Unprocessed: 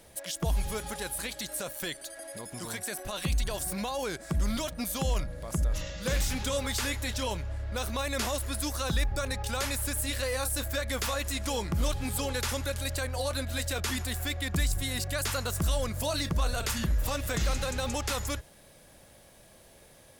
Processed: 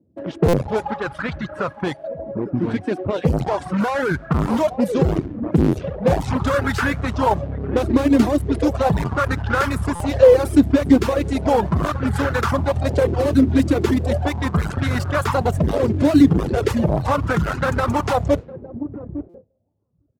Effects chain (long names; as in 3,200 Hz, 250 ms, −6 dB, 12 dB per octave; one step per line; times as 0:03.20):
each half-wave held at its own peak
repeating echo 859 ms, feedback 38%, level −14 dB
noise gate with hold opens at −36 dBFS
high-pass filter 91 Hz 24 dB per octave
low-pass that shuts in the quiet parts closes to 360 Hz, open at −24 dBFS
spectral tilt −3 dB per octave
in parallel at −2.5 dB: compressor whose output falls as the input rises −21 dBFS, ratio −1
on the sum: reverb reduction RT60 1.3 s
buffer that repeats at 0:00.48/0:09.95/0:19.29, samples 256, times 8
auto-filter bell 0.37 Hz 280–1,500 Hz +14 dB
level −1 dB